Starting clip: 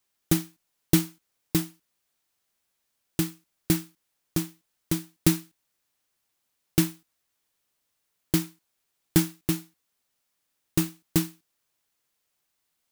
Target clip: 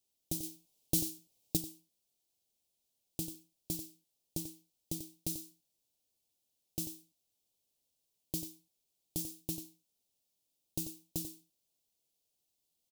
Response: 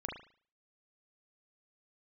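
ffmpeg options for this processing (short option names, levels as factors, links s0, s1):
-filter_complex "[0:a]acrossover=split=4100[s0][s1];[s0]acompressor=threshold=0.0316:ratio=6[s2];[s1]asoftclip=type=hard:threshold=0.075[s3];[s2][s3]amix=inputs=2:normalize=0,alimiter=limit=0.15:level=0:latency=1:release=135,asuperstop=centerf=1500:order=4:qfactor=0.65,aecho=1:1:91:0.335,asettb=1/sr,asplit=3[s4][s5][s6];[s4]atrim=end=0.434[s7];[s5]atrim=start=0.43:end=1.57,asetpts=PTS-STARTPTS,afade=t=in:d=0.004:c=qsin,afade=t=out:st=1.136:d=0.004:c=qsin,acontrast=68[s8];[s6]atrim=start=1.566[s9];[s7][s8]acrossfade=d=0.004:c1=hsin:c2=qsin[s10];[s10][s9]acrossfade=d=0.004:c1=qsin:c2=hsin,volume=0.596"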